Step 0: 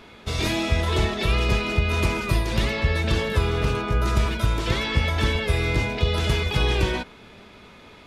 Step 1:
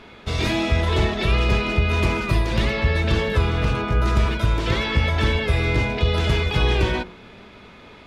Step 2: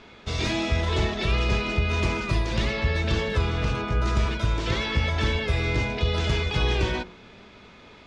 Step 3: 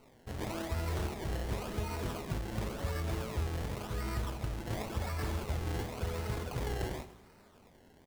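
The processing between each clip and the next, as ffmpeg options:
-af "highshelf=f=6.6k:g=-11.5,bandreject=f=45.55:t=h:w=4,bandreject=f=91.1:t=h:w=4,bandreject=f=136.65:t=h:w=4,bandreject=f=182.2:t=h:w=4,bandreject=f=227.75:t=h:w=4,bandreject=f=273.3:t=h:w=4,bandreject=f=318.85:t=h:w=4,bandreject=f=364.4:t=h:w=4,bandreject=f=409.95:t=h:w=4,bandreject=f=455.5:t=h:w=4,bandreject=f=501.05:t=h:w=4,bandreject=f=546.6:t=h:w=4,bandreject=f=592.15:t=h:w=4,bandreject=f=637.7:t=h:w=4,bandreject=f=683.25:t=h:w=4,bandreject=f=728.8:t=h:w=4,bandreject=f=774.35:t=h:w=4,bandreject=f=819.9:t=h:w=4,bandreject=f=865.45:t=h:w=4,bandreject=f=911:t=h:w=4,bandreject=f=956.55:t=h:w=4,bandreject=f=1.0021k:t=h:w=4,bandreject=f=1.04765k:t=h:w=4,bandreject=f=1.0932k:t=h:w=4,bandreject=f=1.13875k:t=h:w=4,bandreject=f=1.1843k:t=h:w=4,bandreject=f=1.22985k:t=h:w=4,bandreject=f=1.2754k:t=h:w=4,bandreject=f=1.32095k:t=h:w=4,bandreject=f=1.3665k:t=h:w=4,acontrast=61,volume=-3dB"
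-af "lowpass=f=6.7k:t=q:w=1.6,volume=-4.5dB"
-af "flanger=delay=7.3:depth=6:regen=57:speed=0.45:shape=triangular,acrusher=samples=25:mix=1:aa=0.000001:lfo=1:lforange=25:lforate=0.92,aecho=1:1:79|158|237|316|395|474:0.158|0.0935|0.0552|0.0326|0.0192|0.0113,volume=-7.5dB"

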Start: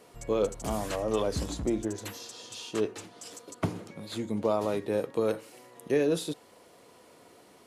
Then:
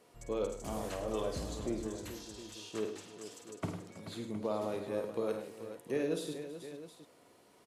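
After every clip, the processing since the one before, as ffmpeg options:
-af "aecho=1:1:51|103|153|324|433|715:0.398|0.316|0.119|0.126|0.282|0.211,volume=-8.5dB"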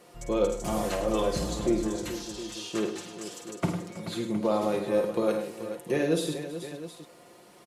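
-af "aecho=1:1:5.7:0.57,volume=8.5dB"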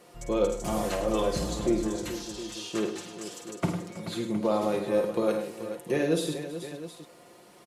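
-af anull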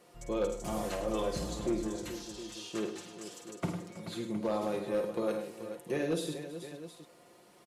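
-af "volume=18.5dB,asoftclip=hard,volume=-18.5dB,volume=-6dB"

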